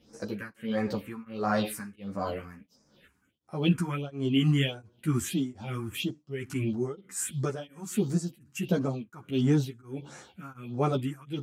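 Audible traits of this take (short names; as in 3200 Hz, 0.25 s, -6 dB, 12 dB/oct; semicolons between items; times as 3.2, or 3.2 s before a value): phasing stages 4, 1.5 Hz, lowest notch 530–3100 Hz; tremolo triangle 1.4 Hz, depth 100%; a shimmering, thickened sound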